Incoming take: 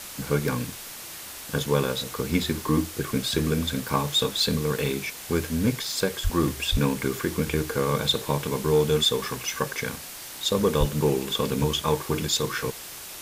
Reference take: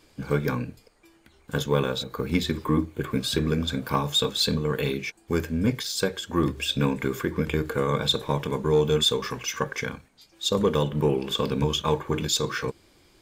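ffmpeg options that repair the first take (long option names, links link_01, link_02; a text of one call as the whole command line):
ffmpeg -i in.wav -filter_complex "[0:a]asplit=3[link_01][link_02][link_03];[link_01]afade=type=out:start_time=6.23:duration=0.02[link_04];[link_02]highpass=frequency=140:width=0.5412,highpass=frequency=140:width=1.3066,afade=type=in:start_time=6.23:duration=0.02,afade=type=out:start_time=6.35:duration=0.02[link_05];[link_03]afade=type=in:start_time=6.35:duration=0.02[link_06];[link_04][link_05][link_06]amix=inputs=3:normalize=0,asplit=3[link_07][link_08][link_09];[link_07]afade=type=out:start_time=6.71:duration=0.02[link_10];[link_08]highpass=frequency=140:width=0.5412,highpass=frequency=140:width=1.3066,afade=type=in:start_time=6.71:duration=0.02,afade=type=out:start_time=6.83:duration=0.02[link_11];[link_09]afade=type=in:start_time=6.83:duration=0.02[link_12];[link_10][link_11][link_12]amix=inputs=3:normalize=0,asplit=3[link_13][link_14][link_15];[link_13]afade=type=out:start_time=10.79:duration=0.02[link_16];[link_14]highpass=frequency=140:width=0.5412,highpass=frequency=140:width=1.3066,afade=type=in:start_time=10.79:duration=0.02,afade=type=out:start_time=10.91:duration=0.02[link_17];[link_15]afade=type=in:start_time=10.91:duration=0.02[link_18];[link_16][link_17][link_18]amix=inputs=3:normalize=0,afwtdn=0.013" out.wav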